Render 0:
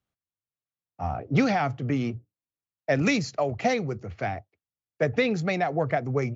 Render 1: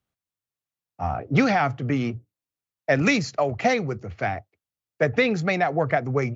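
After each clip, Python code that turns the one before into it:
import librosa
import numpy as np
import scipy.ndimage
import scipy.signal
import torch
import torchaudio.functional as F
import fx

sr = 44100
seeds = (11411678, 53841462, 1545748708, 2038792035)

y = fx.dynamic_eq(x, sr, hz=1500.0, q=0.83, threshold_db=-41.0, ratio=4.0, max_db=4)
y = y * 10.0 ** (2.0 / 20.0)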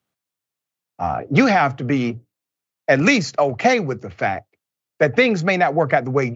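y = scipy.signal.sosfilt(scipy.signal.butter(2, 140.0, 'highpass', fs=sr, output='sos'), x)
y = y * 10.0 ** (5.5 / 20.0)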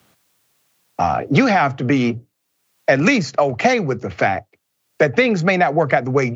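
y = fx.band_squash(x, sr, depth_pct=70)
y = y * 10.0 ** (1.0 / 20.0)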